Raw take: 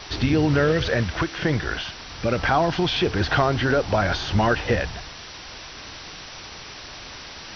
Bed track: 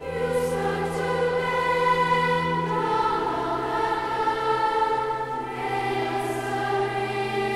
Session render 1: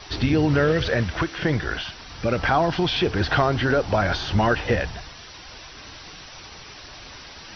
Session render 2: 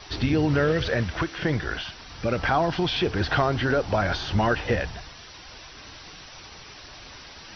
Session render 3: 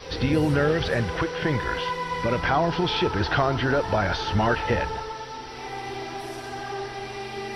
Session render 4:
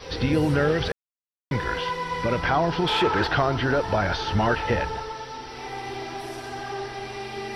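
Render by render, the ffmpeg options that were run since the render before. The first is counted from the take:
ffmpeg -i in.wav -af "afftdn=noise_reduction=6:noise_floor=-40" out.wav
ffmpeg -i in.wav -af "volume=-2.5dB" out.wav
ffmpeg -i in.wav -i bed.wav -filter_complex "[1:a]volume=-8dB[link_01];[0:a][link_01]amix=inputs=2:normalize=0" out.wav
ffmpeg -i in.wav -filter_complex "[0:a]asettb=1/sr,asplit=3[link_01][link_02][link_03];[link_01]atrim=end=2.874[link_04];[link_02]atrim=start=2.87:end=3.27,asetpts=PTS-STARTPTS,afade=type=in:duration=0.004:curve=qsin,afade=type=out:start_time=0.396:duration=0.004:curve=qsin,asplit=2[link_05][link_06];[link_06]highpass=frequency=720:poles=1,volume=16dB,asoftclip=type=tanh:threshold=-11dB[link_07];[link_05][link_07]amix=inputs=2:normalize=0,lowpass=frequency=1900:poles=1,volume=-6dB[link_08];[link_03]atrim=start=3.266[link_09];[link_04][link_08]acrossfade=duration=0.004:curve1=hsin:curve2=qsin[link_10];[link_10][link_09]acrossfade=duration=0.004:curve1=qsin:curve2=hsin,asplit=3[link_11][link_12][link_13];[link_11]atrim=end=0.92,asetpts=PTS-STARTPTS,afade=type=out:start_time=0.916:duration=0.004:curve=hsin[link_14];[link_12]atrim=start=0.92:end=1.51,asetpts=PTS-STARTPTS,volume=0[link_15];[link_13]atrim=start=1.51,asetpts=PTS-STARTPTS,afade=type=in:duration=0.004:curve=hsin[link_16];[link_14][link_15][link_16]concat=n=3:v=0:a=1" out.wav

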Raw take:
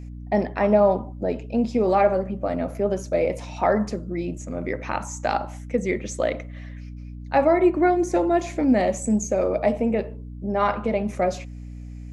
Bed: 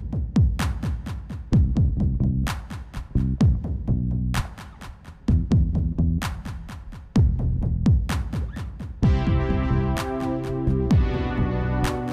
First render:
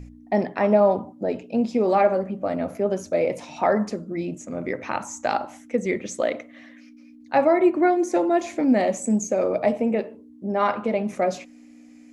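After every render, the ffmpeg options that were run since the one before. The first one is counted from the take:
ffmpeg -i in.wav -af "bandreject=frequency=60:width_type=h:width=4,bandreject=frequency=120:width_type=h:width=4,bandreject=frequency=180:width_type=h:width=4" out.wav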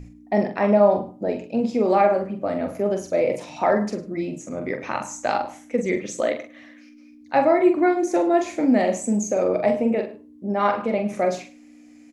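ffmpeg -i in.wav -filter_complex "[0:a]asplit=2[link_01][link_02];[link_02]adelay=44,volume=-6.5dB[link_03];[link_01][link_03]amix=inputs=2:normalize=0,aecho=1:1:104:0.133" out.wav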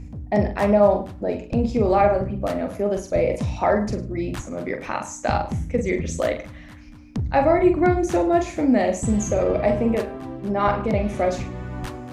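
ffmpeg -i in.wav -i bed.wav -filter_complex "[1:a]volume=-8dB[link_01];[0:a][link_01]amix=inputs=2:normalize=0" out.wav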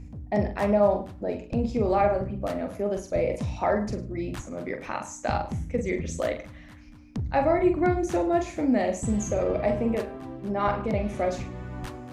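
ffmpeg -i in.wav -af "volume=-5dB" out.wav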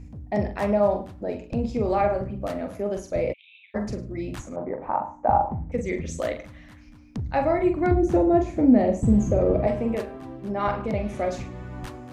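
ffmpeg -i in.wav -filter_complex "[0:a]asplit=3[link_01][link_02][link_03];[link_01]afade=type=out:start_time=3.32:duration=0.02[link_04];[link_02]asuperpass=centerf=2900:order=12:qfactor=2,afade=type=in:start_time=3.32:duration=0.02,afade=type=out:start_time=3.74:duration=0.02[link_05];[link_03]afade=type=in:start_time=3.74:duration=0.02[link_06];[link_04][link_05][link_06]amix=inputs=3:normalize=0,asettb=1/sr,asplit=3[link_07][link_08][link_09];[link_07]atrim=end=4.564[link_10];[link_08]atrim=start=4.56:end=5.72,asetpts=PTS-STARTPTS,afade=type=in:duration=0.004:curve=qsin,afade=type=out:start_time=1.156:duration=0.004:curve=qsin,lowpass=frequency=870:width_type=q:width=3.4[link_11];[link_09]atrim=start=5.716[link_12];[link_10][link_11]acrossfade=duration=0.004:curve1=hsin:curve2=qsin[link_13];[link_13][link_12]acrossfade=duration=0.004:curve1=qsin:curve2=hsin,asettb=1/sr,asplit=3[link_14][link_15][link_16];[link_14]atrim=end=7.914[link_17];[link_15]atrim=start=7.91:end=9.67,asetpts=PTS-STARTPTS,afade=type=in:duration=0.004:curve=qsin,afade=type=out:start_time=1.756:duration=0.004:curve=qsin,tiltshelf=frequency=920:gain=8.5[link_18];[link_16]atrim=start=9.666[link_19];[link_17][link_18]acrossfade=duration=0.004:curve1=hsin:curve2=qsin[link_20];[link_20][link_19]acrossfade=duration=0.004:curve1=qsin:curve2=hsin" out.wav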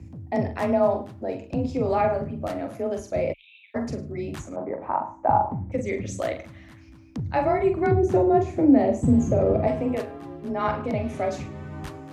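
ffmpeg -i in.wav -af "afreqshift=26" out.wav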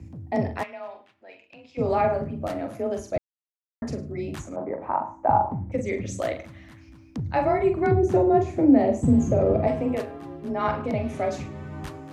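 ffmpeg -i in.wav -filter_complex "[0:a]asplit=3[link_01][link_02][link_03];[link_01]afade=type=out:start_time=0.62:duration=0.02[link_04];[link_02]bandpass=frequency=2500:width_type=q:width=2,afade=type=in:start_time=0.62:duration=0.02,afade=type=out:start_time=1.77:duration=0.02[link_05];[link_03]afade=type=in:start_time=1.77:duration=0.02[link_06];[link_04][link_05][link_06]amix=inputs=3:normalize=0,asplit=3[link_07][link_08][link_09];[link_07]atrim=end=3.18,asetpts=PTS-STARTPTS,afade=type=out:start_time=3.176:duration=0.004:curve=hsin[link_10];[link_08]atrim=start=3.18:end=3.82,asetpts=PTS-STARTPTS,volume=0[link_11];[link_09]atrim=start=3.82,asetpts=PTS-STARTPTS,afade=type=in:duration=0.004:curve=hsin[link_12];[link_10][link_11][link_12]concat=n=3:v=0:a=1" out.wav

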